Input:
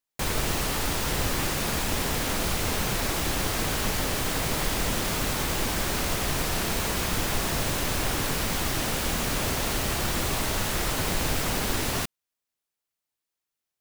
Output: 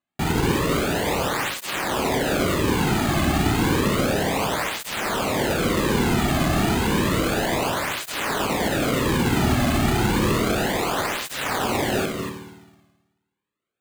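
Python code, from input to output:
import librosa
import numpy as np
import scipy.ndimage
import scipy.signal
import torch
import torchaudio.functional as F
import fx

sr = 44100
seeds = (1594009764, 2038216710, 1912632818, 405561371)

y = fx.lowpass(x, sr, hz=3500.0, slope=6)
y = fx.low_shelf(y, sr, hz=400.0, db=5.5)
y = y + 10.0 ** (-8.5 / 20.0) * np.pad(y, (int(241 * sr / 1000.0), 0))[:len(y)]
y = fx.rev_spring(y, sr, rt60_s=1.2, pass_ms=(53,), chirp_ms=60, drr_db=4.0)
y = np.repeat(y[::8], 8)[:len(y)]
y = fx.flanger_cancel(y, sr, hz=0.31, depth_ms=2.2)
y = F.gain(torch.from_numpy(y), 7.0).numpy()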